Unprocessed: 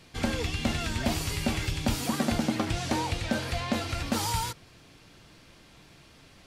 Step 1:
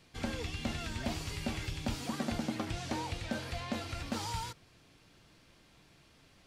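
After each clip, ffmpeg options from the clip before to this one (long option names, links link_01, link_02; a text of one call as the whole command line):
ffmpeg -i in.wav -filter_complex "[0:a]acrossover=split=7800[link_01][link_02];[link_02]acompressor=threshold=-49dB:ratio=4:attack=1:release=60[link_03];[link_01][link_03]amix=inputs=2:normalize=0,volume=-8dB" out.wav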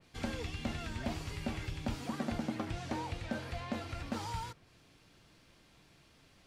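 ffmpeg -i in.wav -af "adynamicequalizer=threshold=0.00141:dfrequency=2700:dqfactor=0.7:tfrequency=2700:tqfactor=0.7:attack=5:release=100:ratio=0.375:range=3:mode=cutabove:tftype=highshelf,volume=-1dB" out.wav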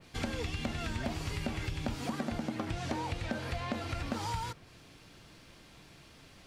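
ffmpeg -i in.wav -af "acompressor=threshold=-39dB:ratio=6,volume=7.5dB" out.wav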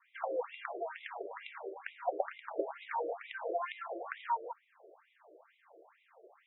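ffmpeg -i in.wav -af "adynamicsmooth=sensitivity=2:basefreq=910,afftfilt=real='re*between(b*sr/1024,470*pow(2800/470,0.5+0.5*sin(2*PI*2.2*pts/sr))/1.41,470*pow(2800/470,0.5+0.5*sin(2*PI*2.2*pts/sr))*1.41)':imag='im*between(b*sr/1024,470*pow(2800/470,0.5+0.5*sin(2*PI*2.2*pts/sr))/1.41,470*pow(2800/470,0.5+0.5*sin(2*PI*2.2*pts/sr))*1.41)':win_size=1024:overlap=0.75,volume=10.5dB" out.wav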